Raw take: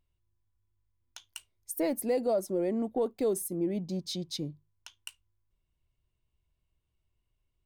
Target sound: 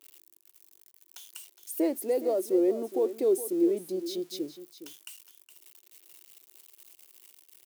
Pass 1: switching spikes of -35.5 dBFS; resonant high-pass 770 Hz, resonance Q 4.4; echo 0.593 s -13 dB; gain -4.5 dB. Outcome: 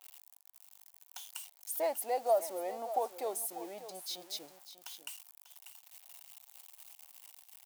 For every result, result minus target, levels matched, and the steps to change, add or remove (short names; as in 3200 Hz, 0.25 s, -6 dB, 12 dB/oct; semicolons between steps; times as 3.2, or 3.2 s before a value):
1000 Hz band +16.5 dB; echo 0.178 s late
change: resonant high-pass 360 Hz, resonance Q 4.4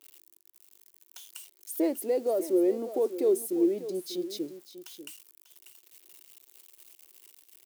echo 0.178 s late
change: echo 0.415 s -13 dB